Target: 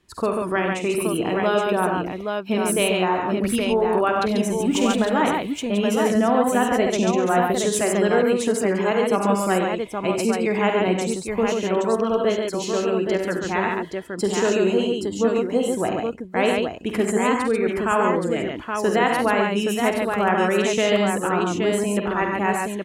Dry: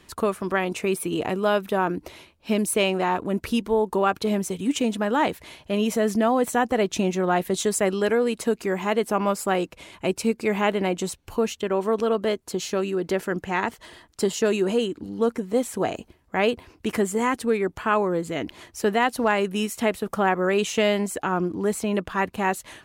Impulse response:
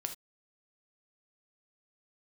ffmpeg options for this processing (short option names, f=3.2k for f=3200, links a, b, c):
-filter_complex "[0:a]asettb=1/sr,asplit=3[a][b][c];[a]atrim=end=4.604[d];[b]atrim=start=4.6:end=5.07,asetpts=PTS-STARTPTS,afade=t=in:d=0.004:c=qsin,afade=t=out:st=0.466:d=0.004:c=qsin,aeval=exprs='val(0)+0.5*0.0282*sgn(val(0))':c=same[e];[c]atrim=start=5.066[f];[d][e]acrossfade=d=0.004:c1=hsin:c2=qsin[g];[g][f]acrossfade=d=0.004:c1=qsin:c2=hsin,afftdn=nr=13:nf=-43,aecho=1:1:49|70|94|140|822:0.335|0.335|0.316|0.668|0.562"